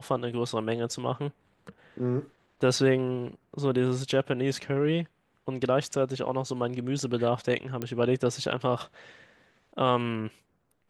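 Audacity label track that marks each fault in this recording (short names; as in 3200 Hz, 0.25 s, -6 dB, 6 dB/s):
7.820000	7.820000	pop -18 dBFS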